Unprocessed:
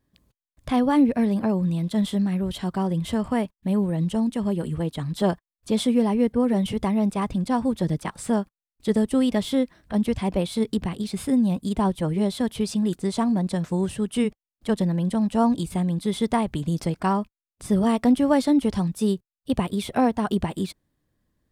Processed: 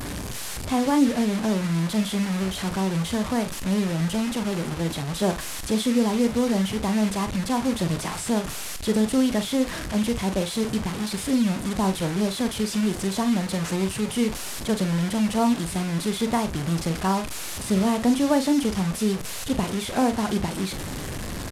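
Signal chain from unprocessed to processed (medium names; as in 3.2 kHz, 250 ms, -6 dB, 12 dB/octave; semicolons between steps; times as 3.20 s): one-bit delta coder 64 kbps, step -24.5 dBFS; doubling 42 ms -9.5 dB; trim -1.5 dB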